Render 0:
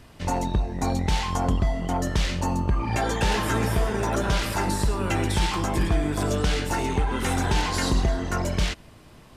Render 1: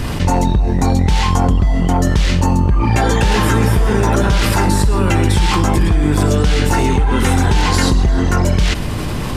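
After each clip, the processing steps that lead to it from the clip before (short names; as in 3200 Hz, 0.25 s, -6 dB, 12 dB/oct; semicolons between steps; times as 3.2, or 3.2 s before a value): low shelf 250 Hz +5.5 dB; notch 650 Hz, Q 12; fast leveller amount 70%; gain +3 dB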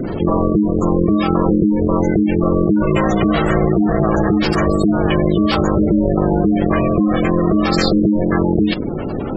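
ring modulator 260 Hz; spectral gate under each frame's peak -20 dB strong; dynamic EQ 5100 Hz, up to +8 dB, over -47 dBFS, Q 1; gain +1 dB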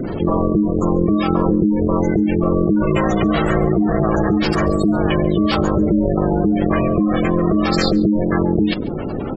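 echo 0.14 s -22.5 dB; gain -1.5 dB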